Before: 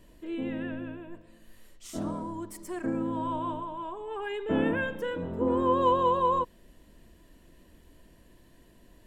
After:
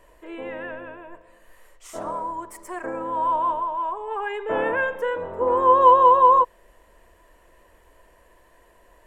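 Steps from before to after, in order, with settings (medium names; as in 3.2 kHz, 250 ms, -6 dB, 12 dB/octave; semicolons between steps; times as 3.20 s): graphic EQ 125/250/500/1000/2000/4000/8000 Hz -9/-11/+8/+10/+6/-5/+3 dB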